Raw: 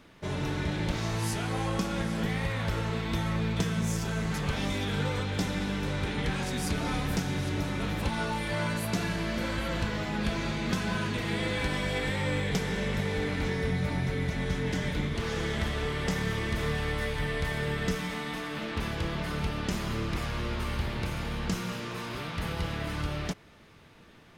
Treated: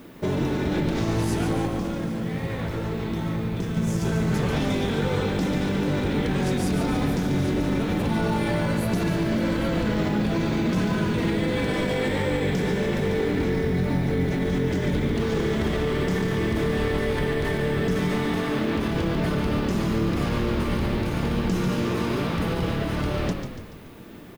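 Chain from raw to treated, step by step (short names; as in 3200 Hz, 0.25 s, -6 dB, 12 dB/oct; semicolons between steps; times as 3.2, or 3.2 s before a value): bell 290 Hz +11.5 dB 2.3 oct; de-hum 49.74 Hz, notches 6; limiter -21 dBFS, peak gain reduction 11.5 dB; 1.65–3.77 flange 1.6 Hz, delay 6.3 ms, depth 7.5 ms, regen -78%; added noise violet -64 dBFS; frequency-shifting echo 0.143 s, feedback 49%, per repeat -44 Hz, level -7 dB; gain +4 dB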